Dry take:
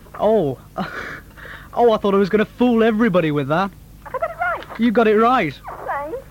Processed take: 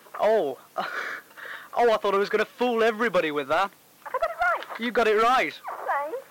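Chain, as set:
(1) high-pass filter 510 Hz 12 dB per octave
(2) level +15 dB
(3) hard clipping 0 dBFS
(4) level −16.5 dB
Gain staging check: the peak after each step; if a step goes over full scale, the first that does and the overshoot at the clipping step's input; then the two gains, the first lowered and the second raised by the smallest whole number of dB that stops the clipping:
−5.0, +10.0, 0.0, −16.5 dBFS
step 2, 10.0 dB
step 2 +5 dB, step 4 −6.5 dB

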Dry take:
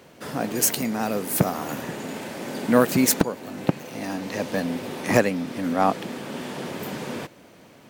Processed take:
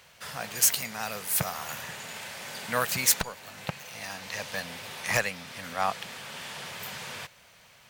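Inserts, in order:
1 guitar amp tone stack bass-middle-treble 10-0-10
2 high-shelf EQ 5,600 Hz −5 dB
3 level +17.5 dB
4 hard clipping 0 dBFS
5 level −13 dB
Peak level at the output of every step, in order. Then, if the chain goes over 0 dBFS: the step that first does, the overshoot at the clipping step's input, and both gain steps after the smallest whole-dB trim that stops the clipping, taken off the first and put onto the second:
−4.5, −7.5, +10.0, 0.0, −13.0 dBFS
step 3, 10.0 dB
step 3 +7.5 dB, step 5 −3 dB

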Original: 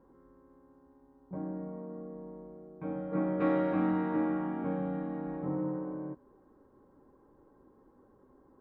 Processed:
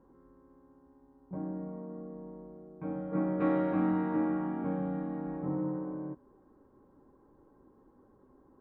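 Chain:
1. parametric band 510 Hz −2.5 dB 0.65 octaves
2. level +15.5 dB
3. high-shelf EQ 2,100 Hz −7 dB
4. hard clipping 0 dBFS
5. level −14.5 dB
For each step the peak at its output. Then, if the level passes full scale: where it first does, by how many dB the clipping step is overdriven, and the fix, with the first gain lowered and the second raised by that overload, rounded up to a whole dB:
−19.0, −3.5, −4.0, −4.0, −18.5 dBFS
no step passes full scale

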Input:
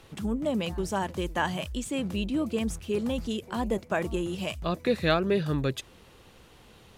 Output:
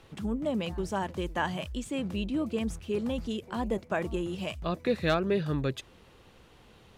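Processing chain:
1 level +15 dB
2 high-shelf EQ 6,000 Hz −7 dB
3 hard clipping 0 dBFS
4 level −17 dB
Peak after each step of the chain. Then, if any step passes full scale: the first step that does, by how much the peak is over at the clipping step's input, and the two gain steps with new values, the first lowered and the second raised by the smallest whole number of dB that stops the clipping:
+4.5, +4.0, 0.0, −17.0 dBFS
step 1, 4.0 dB
step 1 +11 dB, step 4 −13 dB

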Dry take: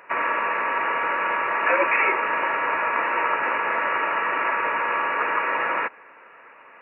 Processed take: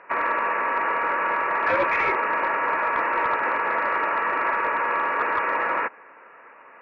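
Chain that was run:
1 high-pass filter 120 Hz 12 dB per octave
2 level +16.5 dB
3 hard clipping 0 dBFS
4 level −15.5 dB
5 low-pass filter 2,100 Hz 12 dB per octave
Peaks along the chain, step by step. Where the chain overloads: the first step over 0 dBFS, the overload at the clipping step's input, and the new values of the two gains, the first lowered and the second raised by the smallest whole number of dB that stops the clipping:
−7.5, +9.0, 0.0, −15.5, −15.0 dBFS
step 2, 9.0 dB
step 2 +7.5 dB, step 4 −6.5 dB

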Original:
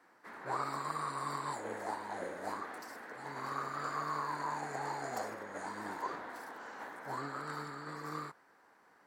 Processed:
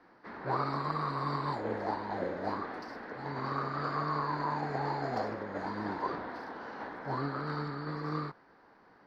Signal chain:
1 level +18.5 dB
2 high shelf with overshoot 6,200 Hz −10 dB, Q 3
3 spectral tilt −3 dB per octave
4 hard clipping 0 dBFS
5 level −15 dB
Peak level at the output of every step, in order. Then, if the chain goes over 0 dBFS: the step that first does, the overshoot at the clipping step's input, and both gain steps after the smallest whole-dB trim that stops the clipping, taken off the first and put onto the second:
−6.5, −6.5, −5.0, −5.0, −20.0 dBFS
no step passes full scale

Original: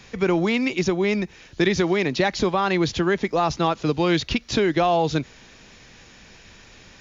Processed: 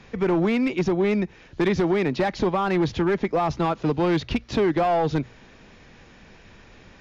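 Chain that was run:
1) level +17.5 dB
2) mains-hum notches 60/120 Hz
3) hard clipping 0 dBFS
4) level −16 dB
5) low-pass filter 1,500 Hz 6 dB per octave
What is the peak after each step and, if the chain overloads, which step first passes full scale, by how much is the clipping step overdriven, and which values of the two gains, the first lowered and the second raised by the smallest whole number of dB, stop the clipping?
+9.5, +9.5, 0.0, −16.0, −16.0 dBFS
step 1, 9.5 dB
step 1 +7.5 dB, step 4 −6 dB

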